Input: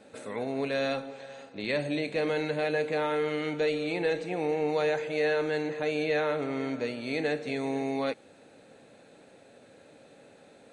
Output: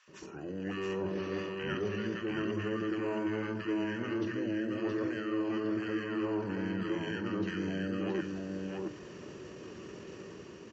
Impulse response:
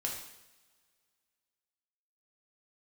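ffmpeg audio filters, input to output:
-filter_complex "[0:a]highpass=f=60:w=0.5412,highpass=f=60:w=1.3066,bandreject=f=60:t=h:w=6,bandreject=f=120:t=h:w=6,bandreject=f=180:t=h:w=6,bandreject=f=240:t=h:w=6,bandreject=f=300:t=h:w=6,bandreject=f=360:t=h:w=6,bandreject=f=420:t=h:w=6,acrossover=split=1600[s0][s1];[s0]adelay=70[s2];[s2][s1]amix=inputs=2:normalize=0,areverse,acompressor=threshold=0.01:ratio=12,areverse,asetrate=31183,aresample=44100,atempo=1.41421,dynaudnorm=f=200:g=5:m=2.51,asplit=2[s3][s4];[s4]aecho=0:1:672:0.668[s5];[s3][s5]amix=inputs=2:normalize=0,aresample=22050,aresample=44100"

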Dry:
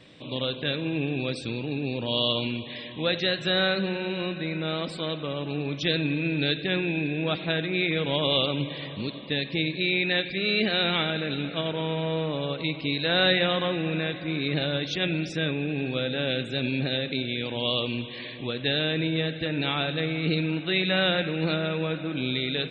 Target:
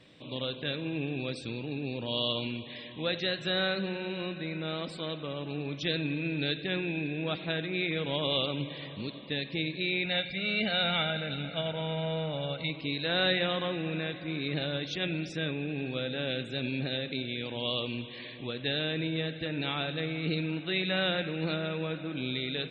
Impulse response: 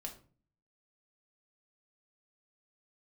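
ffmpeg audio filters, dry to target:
-filter_complex "[0:a]asettb=1/sr,asplit=3[s0][s1][s2];[s0]atrim=end=10.054[s3];[s1]atrim=start=10.05:end=12.7,asetpts=PTS-STARTPTS,afade=t=in:d=0.004:c=qsin,afade=t=out:st=2.646:d=0.004:c=qsin,aecho=1:1:1.4:0.62,atrim=end_sample=116865[s4];[s2]atrim=start=12.696[s5];[s3][s4]acrossfade=d=0.004:c1=hsin:c2=qsin[s6];[s6][s5]acrossfade=d=0.004:c1=qsin:c2=hsin,volume=0.531"

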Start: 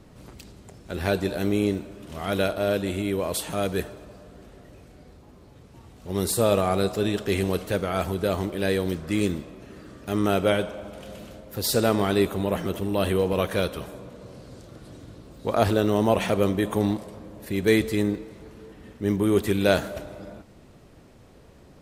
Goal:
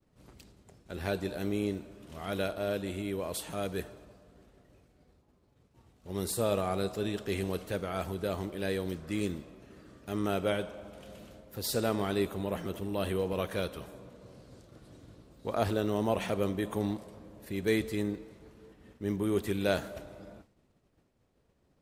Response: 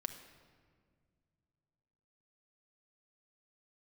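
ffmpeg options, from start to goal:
-af "agate=range=0.0224:threshold=0.00794:ratio=3:detection=peak,volume=0.376"

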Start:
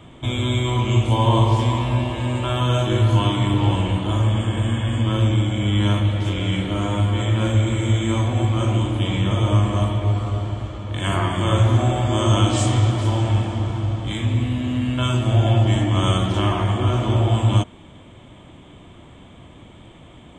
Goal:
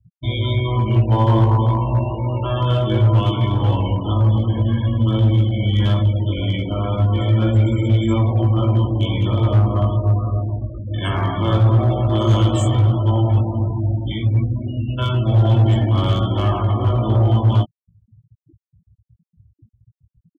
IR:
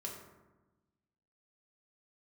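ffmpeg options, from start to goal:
-filter_complex "[0:a]asettb=1/sr,asplit=3[s0][s1][s2];[s0]atrim=end=0.534[s3];[s1]atrim=start=0.53:end=2.67,asetpts=PTS-STARTPTS,afade=t=in:d=0.004:c=qsin,afade=t=out:st=2.136:d=0.004:c=qsin,highshelf=f=3500:g=-6[s4];[s2]atrim=start=2.666[s5];[s3][s4]acrossfade=d=0.004:c1=hsin:c2=qsin[s6];[s6][s5]acrossfade=d=0.004:c1=qsin:c2=hsin,afftfilt=real='re*gte(hypot(re,im),0.0631)':imag='im*gte(hypot(re,im),0.0631)':win_size=1024:overlap=0.75,acrossover=split=490[s7][s8];[s8]acompressor=threshold=0.0708:ratio=3[s9];[s7][s9]amix=inputs=2:normalize=0,volume=4.22,asoftclip=hard,volume=0.237,asplit=2[s10][s11];[s11]adelay=18,volume=0.631[s12];[s10][s12]amix=inputs=2:normalize=0,adynamicequalizer=threshold=0.0224:dfrequency=2600:dqfactor=0.7:tfrequency=2600:tqfactor=0.7:attack=5:release=100:ratio=0.375:range=1.5:mode=cutabove:tftype=highshelf"

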